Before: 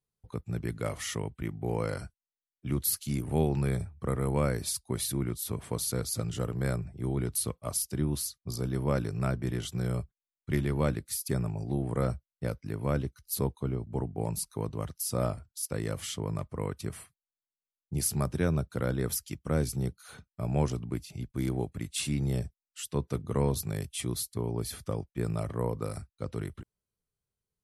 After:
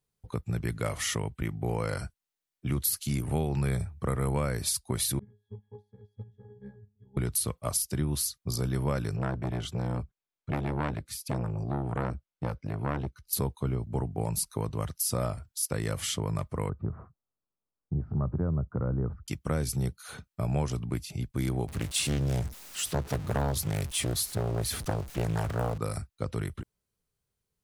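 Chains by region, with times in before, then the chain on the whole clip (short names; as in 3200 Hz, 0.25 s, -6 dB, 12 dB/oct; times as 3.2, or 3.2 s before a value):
5.19–7.17 half-wave gain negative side -3 dB + octave resonator G#, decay 0.35 s + upward expander 2.5:1, over -54 dBFS
9.16–13.33 LPF 2600 Hz 6 dB/oct + notch 1900 Hz, Q 15 + core saturation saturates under 810 Hz
16.69–19.28 Chebyshev low-pass 1300 Hz, order 4 + low shelf 380 Hz +9.5 dB + compressor 1.5:1, threshold -40 dBFS
21.68–25.78 zero-crossing step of -41.5 dBFS + Doppler distortion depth 0.68 ms
whole clip: dynamic EQ 310 Hz, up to -5 dB, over -40 dBFS, Q 0.71; compressor, threshold -30 dBFS; gain +5.5 dB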